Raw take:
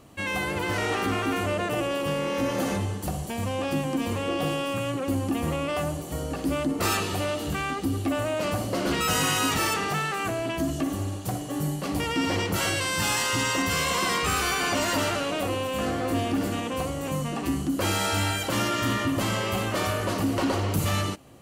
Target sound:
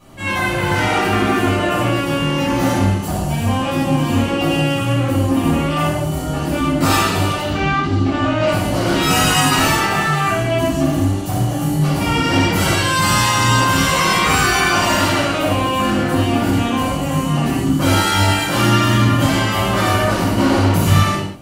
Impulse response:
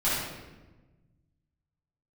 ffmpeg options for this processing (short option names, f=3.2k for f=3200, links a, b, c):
-filter_complex "[0:a]asettb=1/sr,asplit=3[a][b][c];[a]atrim=end=7.414[d];[b]atrim=start=7.41:end=8.47,asetpts=PTS-STARTPTS,afade=t=in:d=0.004:c=qsin,afade=t=out:st=1.056:d=0.004:c=qsin,lowpass=f=5.9k:w=0.5412,lowpass=f=5.9k:w=1.3066[e];[c]atrim=start=8.466[f];[d][e]acrossfade=d=0.004:c1=hsin:c2=qsin[g];[g][f]acrossfade=d=0.004:c1=qsin:c2=hsin[h];[1:a]atrim=start_sample=2205,afade=t=out:st=0.27:d=0.01,atrim=end_sample=12348[i];[h][i]afir=irnorm=-1:irlink=0,volume=-1.5dB"